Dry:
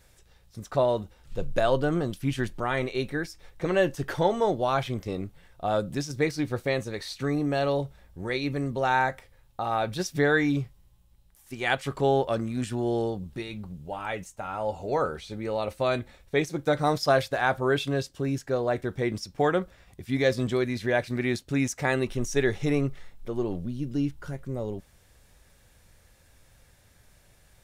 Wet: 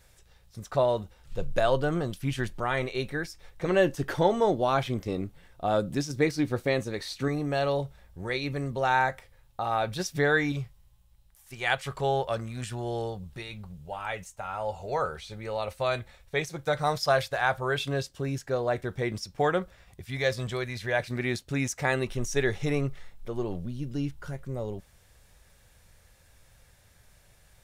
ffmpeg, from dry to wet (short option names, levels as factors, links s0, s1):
-af "asetnsamples=n=441:p=0,asendcmd='3.68 equalizer g 2;7.28 equalizer g -5;10.52 equalizer g -13;17.8 equalizer g -5.5;20.01 equalizer g -14.5;21 equalizer g -5',equalizer=f=280:t=o:w=0.98:g=-4.5"